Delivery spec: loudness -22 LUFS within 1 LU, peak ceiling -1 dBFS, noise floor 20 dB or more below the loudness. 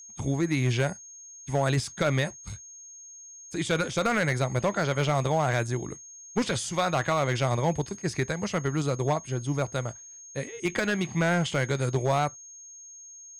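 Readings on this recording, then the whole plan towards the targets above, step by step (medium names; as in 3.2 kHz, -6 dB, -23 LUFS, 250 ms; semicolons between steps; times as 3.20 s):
clipped samples 1.0%; clipping level -18.0 dBFS; steady tone 6.5 kHz; tone level -44 dBFS; loudness -27.5 LUFS; peak level -18.0 dBFS; loudness target -22.0 LUFS
-> clip repair -18 dBFS; band-stop 6.5 kHz, Q 30; trim +5.5 dB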